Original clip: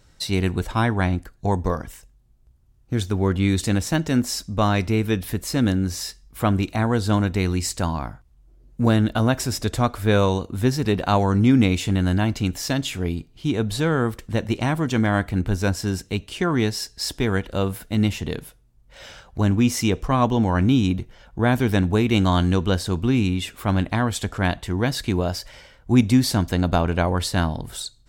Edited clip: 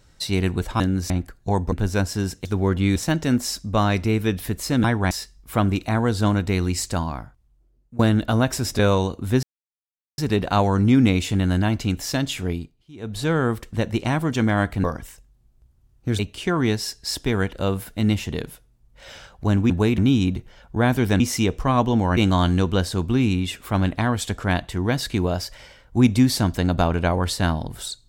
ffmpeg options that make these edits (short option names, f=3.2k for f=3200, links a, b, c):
-filter_complex "[0:a]asplit=19[a][b][c][d][e][f][g][h][i][j][k][l][m][n][o][p][q][r][s];[a]atrim=end=0.802[t];[b]atrim=start=5.678:end=5.982[u];[c]atrim=start=1.068:end=1.692[v];[d]atrim=start=15.398:end=16.132[w];[e]atrim=start=3.038:end=3.552[x];[f]atrim=start=3.798:end=5.682[y];[g]atrim=start=0.798:end=1.072[z];[h]atrim=start=5.978:end=8.86,asetpts=PTS-STARTPTS,afade=t=out:st=1.792:d=1.09:silence=0.0841395[aa];[i]atrim=start=8.86:end=9.662,asetpts=PTS-STARTPTS,afade=t=in:d=0.004:c=hsin:silence=0.0841395[ab];[j]atrim=start=10.098:end=10.74,asetpts=PTS-STARTPTS,afade=t=out:st=0.638:d=0.004:c=hsin,apad=pad_dur=0.75[ac];[k]atrim=start=10.74:end=13.4,asetpts=PTS-STARTPTS,afade=t=in:d=0.004:c=hsin,afade=t=out:st=2.3:d=0.36:silence=0.0841395[ad];[l]atrim=start=13.4:end=13.5,asetpts=PTS-STARTPTS,volume=-21.5dB[ae];[m]atrim=start=13.5:end=15.402,asetpts=PTS-STARTPTS,afade=t=in:d=0.36:silence=0.0841395[af];[n]atrim=start=1.688:end=3.042[ag];[o]atrim=start=16.128:end=19.642[ah];[p]atrim=start=21.828:end=22.112[ai];[q]atrim=start=20.608:end=21.832[aj];[r]atrim=start=19.638:end=20.612[ak];[s]atrim=start=22.108[al];[t][u]acrossfade=d=0.004:c1=hsin:c2=hsin[am];[am][v]acrossfade=d=0.004:c1=hsin:c2=hsin[an];[an][w]acrossfade=d=0.004:c1=hsin:c2=hsin[ao];[ao][x]acrossfade=d=0.004:c1=hsin:c2=hsin[ap];[ap][y]acrossfade=d=0.004:c1=hsin:c2=hsin[aq];[aq][z]acrossfade=d=0.004:c1=hsin:c2=hsin[ar];[aa][ab]concat=n=2:v=0:a=1[as];[ar][as]acrossfade=d=0.004:c1=hsin:c2=hsin[at];[ac][ad][ae][af]concat=n=4:v=0:a=1[au];[at][au]acrossfade=d=0.004:c1=hsin:c2=hsin[av];[av][ag]acrossfade=d=0.004:c1=hsin:c2=hsin[aw];[aw][ah]acrossfade=d=0.004:c1=hsin:c2=hsin[ax];[ax][ai]acrossfade=d=0.004:c1=hsin:c2=hsin[ay];[ay][aj]acrossfade=d=0.004:c1=hsin:c2=hsin[az];[az][ak]acrossfade=d=0.004:c1=hsin:c2=hsin[ba];[ba][al]acrossfade=d=0.004:c1=hsin:c2=hsin"